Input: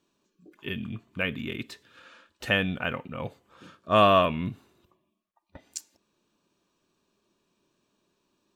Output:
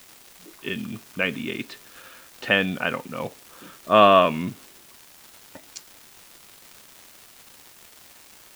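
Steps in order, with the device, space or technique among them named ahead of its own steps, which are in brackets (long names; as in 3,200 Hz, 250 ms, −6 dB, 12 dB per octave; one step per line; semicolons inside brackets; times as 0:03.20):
78 rpm shellac record (band-pass filter 180–4,300 Hz; surface crackle 320 per second −40 dBFS; white noise bed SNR 25 dB)
level +5 dB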